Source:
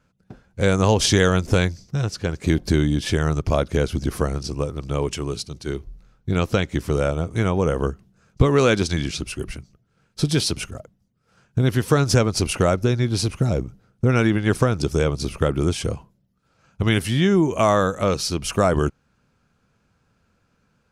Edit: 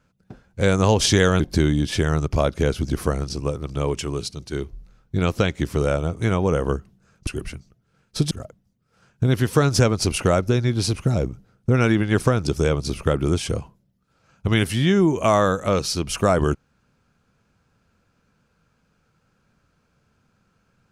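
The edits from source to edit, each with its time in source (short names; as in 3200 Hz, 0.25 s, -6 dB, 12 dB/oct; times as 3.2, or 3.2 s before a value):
1.4–2.54 cut
8.41–9.3 cut
10.34–10.66 cut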